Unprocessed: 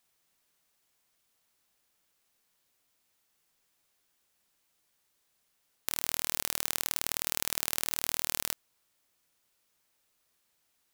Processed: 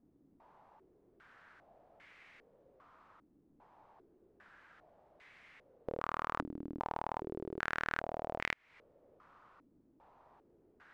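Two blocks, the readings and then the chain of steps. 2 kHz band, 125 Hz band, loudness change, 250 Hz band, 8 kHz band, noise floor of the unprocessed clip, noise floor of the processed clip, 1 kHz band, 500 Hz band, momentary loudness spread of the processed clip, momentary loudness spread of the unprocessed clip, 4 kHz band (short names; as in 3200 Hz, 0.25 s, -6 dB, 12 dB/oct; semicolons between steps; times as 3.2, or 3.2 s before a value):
+1.0 dB, +1.0 dB, -8.5 dB, +5.0 dB, under -30 dB, -75 dBFS, -70 dBFS, +5.0 dB, +5.0 dB, 22 LU, 5 LU, -16.5 dB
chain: compressor 8:1, threshold -41 dBFS, peak gain reduction 17 dB; stepped low-pass 2.5 Hz 290–2100 Hz; gain +17 dB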